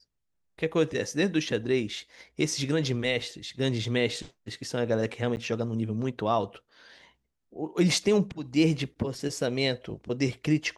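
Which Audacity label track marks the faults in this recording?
5.360000	5.370000	gap 9.8 ms

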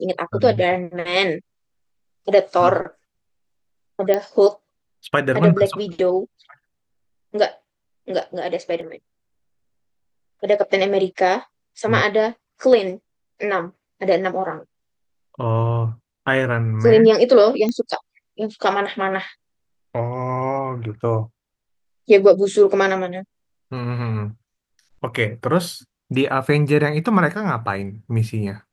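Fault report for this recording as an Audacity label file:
4.140000	4.140000	pop -7 dBFS
8.810000	8.810000	gap 2.1 ms
17.690000	17.690000	pop -11 dBFS

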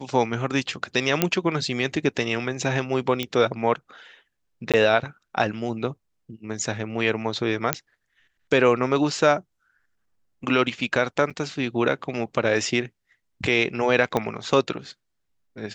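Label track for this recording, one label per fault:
1.220000	1.220000	pop -3 dBFS
3.230000	3.230000	pop -11 dBFS
4.720000	4.740000	gap 17 ms
7.730000	7.730000	pop -2 dBFS
11.300000	11.310000	gap 6.5 ms
14.170000	14.170000	pop -10 dBFS

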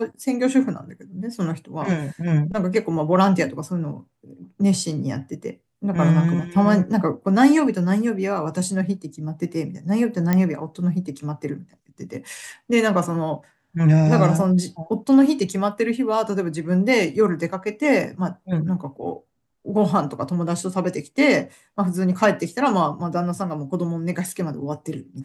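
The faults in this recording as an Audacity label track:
10.330000	10.330000	pop -8 dBFS

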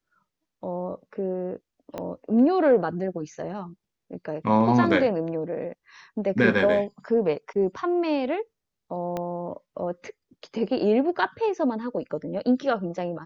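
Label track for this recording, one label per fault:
1.980000	1.980000	pop -19 dBFS
9.170000	9.170000	pop -17 dBFS

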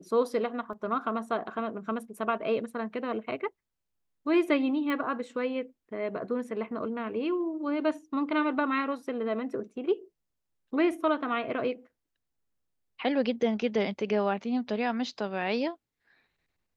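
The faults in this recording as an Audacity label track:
0.730000	0.730000	gap 2.9 ms
4.900000	4.900000	pop -21 dBFS

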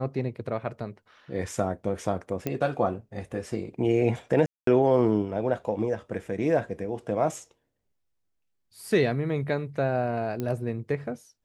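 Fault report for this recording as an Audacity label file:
2.470000	2.470000	pop -15 dBFS
4.460000	4.670000	gap 0.213 s
10.400000	10.400000	pop -18 dBFS

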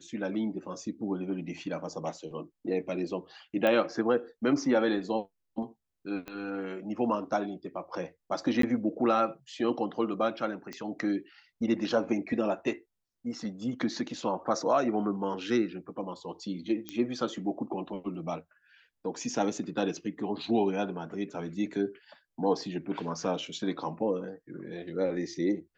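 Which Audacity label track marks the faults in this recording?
3.670000	3.670000	pop -16 dBFS
6.280000	6.280000	pop -24 dBFS
8.620000	8.630000	gap 13 ms
10.730000	10.730000	pop -24 dBFS
16.890000	16.890000	pop -20 dBFS

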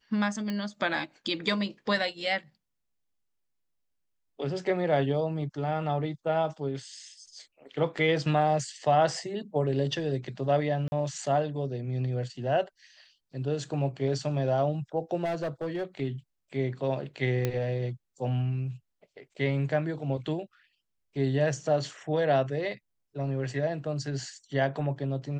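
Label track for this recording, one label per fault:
0.500000	0.500000	pop -20 dBFS
10.880000	10.920000	gap 41 ms
15.240000	15.840000	clipped -27 dBFS
17.450000	17.450000	pop -14 dBFS

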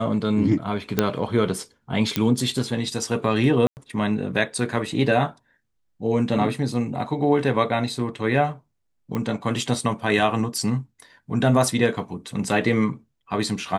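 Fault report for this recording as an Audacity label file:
0.990000	0.990000	pop -4 dBFS
2.160000	2.160000	pop -6 dBFS
3.670000	3.770000	gap 99 ms
9.150000	9.150000	pop -15 dBFS

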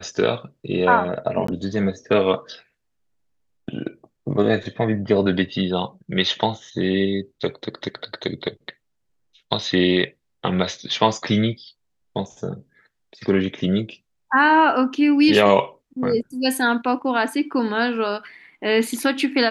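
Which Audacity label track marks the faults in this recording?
1.470000	1.480000	gap 14 ms

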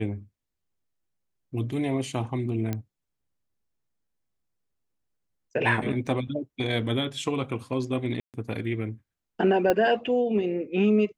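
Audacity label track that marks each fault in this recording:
2.730000	2.730000	pop -16 dBFS
6.070000	6.070000	gap 2.8 ms
8.200000	8.340000	gap 0.138 s
9.700000	9.700000	pop -10 dBFS

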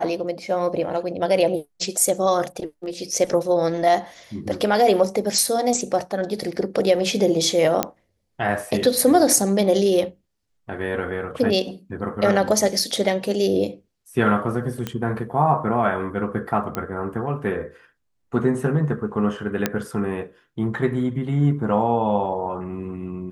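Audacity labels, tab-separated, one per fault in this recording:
7.830000	7.830000	pop -4 dBFS
12.790000	12.790000	gap 4.3 ms
14.870000	14.870000	pop -12 dBFS
16.750000	16.750000	pop -11 dBFS
19.660000	19.660000	pop -5 dBFS

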